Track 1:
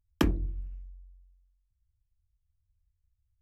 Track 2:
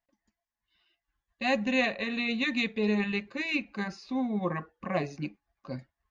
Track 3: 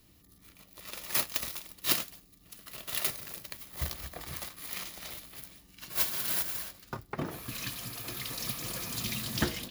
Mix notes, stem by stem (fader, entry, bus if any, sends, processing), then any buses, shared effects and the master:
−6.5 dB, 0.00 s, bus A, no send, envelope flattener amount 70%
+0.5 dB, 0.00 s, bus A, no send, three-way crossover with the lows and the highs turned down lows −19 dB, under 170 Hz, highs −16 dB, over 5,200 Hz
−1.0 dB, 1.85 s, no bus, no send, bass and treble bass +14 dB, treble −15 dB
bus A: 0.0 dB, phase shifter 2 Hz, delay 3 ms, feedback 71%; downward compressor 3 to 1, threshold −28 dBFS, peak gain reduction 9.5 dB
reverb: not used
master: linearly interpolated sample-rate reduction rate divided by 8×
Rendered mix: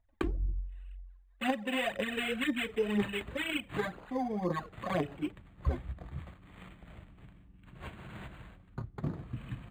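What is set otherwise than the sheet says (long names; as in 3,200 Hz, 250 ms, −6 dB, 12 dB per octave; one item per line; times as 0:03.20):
stem 1: missing envelope flattener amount 70%
stem 3 −1.0 dB → −8.0 dB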